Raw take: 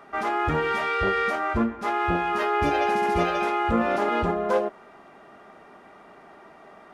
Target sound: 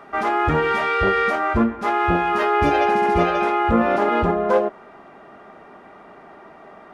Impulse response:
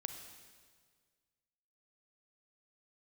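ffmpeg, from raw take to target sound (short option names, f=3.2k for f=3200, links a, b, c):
-af "asetnsamples=n=441:p=0,asendcmd='2.85 highshelf g -9.5',highshelf=f=3.8k:g=-5,volume=5.5dB"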